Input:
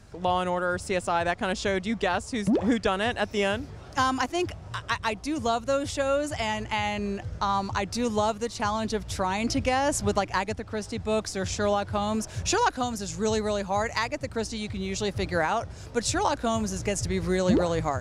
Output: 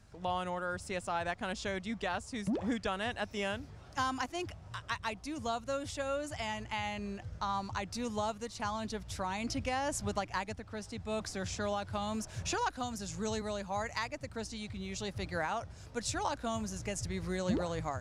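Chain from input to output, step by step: peaking EQ 400 Hz -4 dB 0.97 oct; 11.20–13.42 s: three bands compressed up and down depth 40%; trim -8.5 dB

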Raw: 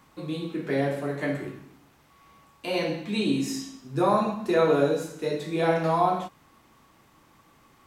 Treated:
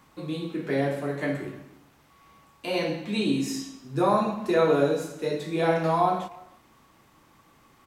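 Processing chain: speakerphone echo 300 ms, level -22 dB

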